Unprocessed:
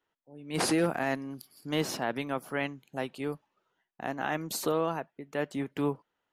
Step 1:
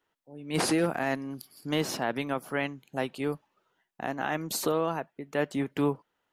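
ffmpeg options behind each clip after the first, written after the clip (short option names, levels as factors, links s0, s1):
-af "alimiter=limit=0.1:level=0:latency=1:release=399,volume=1.5"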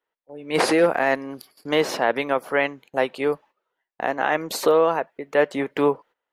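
-af "agate=range=0.2:threshold=0.00251:ratio=16:detection=peak,equalizer=f=125:t=o:w=1:g=-4,equalizer=f=500:t=o:w=1:g=11,equalizer=f=1000:t=o:w=1:g=6,equalizer=f=2000:t=o:w=1:g=8,equalizer=f=4000:t=o:w=1:g=4"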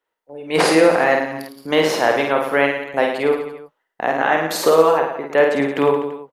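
-af "aecho=1:1:50|107.5|173.6|249.7|337.1:0.631|0.398|0.251|0.158|0.1,volume=1.41"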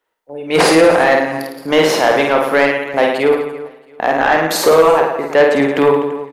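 -af "acontrast=88,aecho=1:1:337|674|1011:0.075|0.03|0.012,volume=0.891"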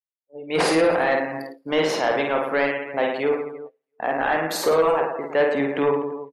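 -af "agate=range=0.251:threshold=0.0398:ratio=16:detection=peak,afftdn=nr=19:nf=-32,volume=0.355"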